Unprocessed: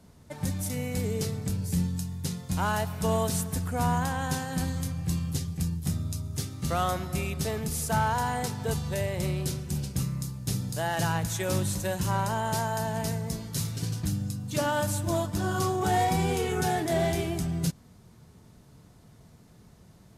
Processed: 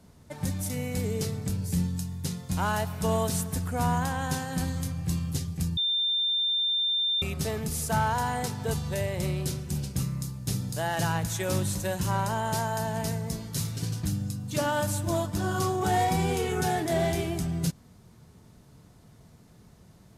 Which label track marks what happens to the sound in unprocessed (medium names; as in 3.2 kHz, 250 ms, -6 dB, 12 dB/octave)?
5.770000	7.220000	bleep 3.59 kHz -23.5 dBFS